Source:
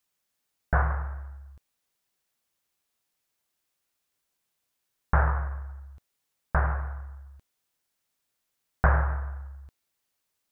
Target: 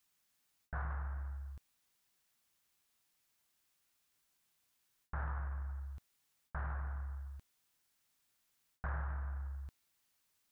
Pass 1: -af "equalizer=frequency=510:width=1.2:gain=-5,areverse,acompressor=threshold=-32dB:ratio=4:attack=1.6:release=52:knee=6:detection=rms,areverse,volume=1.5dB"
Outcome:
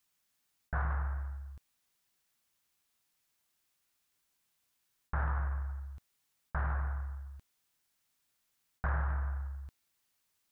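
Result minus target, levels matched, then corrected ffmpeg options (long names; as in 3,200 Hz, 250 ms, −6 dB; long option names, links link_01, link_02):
downward compressor: peak gain reduction −6.5 dB
-af "equalizer=frequency=510:width=1.2:gain=-5,areverse,acompressor=threshold=-41dB:ratio=4:attack=1.6:release=52:knee=6:detection=rms,areverse,volume=1.5dB"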